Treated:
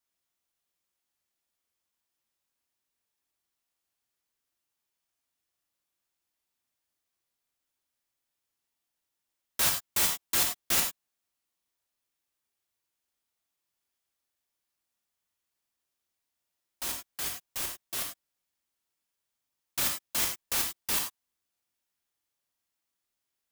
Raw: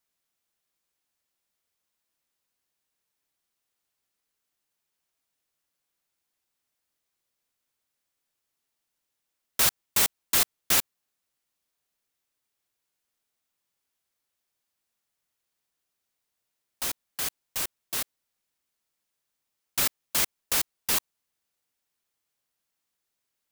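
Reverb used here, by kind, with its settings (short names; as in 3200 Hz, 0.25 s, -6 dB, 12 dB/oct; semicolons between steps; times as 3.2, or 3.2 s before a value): non-linear reverb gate 0.12 s flat, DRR 2 dB; gain -5 dB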